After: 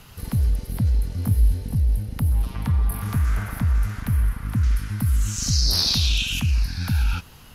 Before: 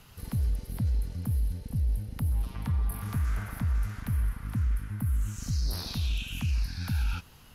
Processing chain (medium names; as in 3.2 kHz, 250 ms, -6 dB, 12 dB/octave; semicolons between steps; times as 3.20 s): 1.15–1.75 s: doubling 20 ms -3 dB; 4.63–6.40 s: peaking EQ 5.1 kHz +12.5 dB 1.6 oct; trim +7.5 dB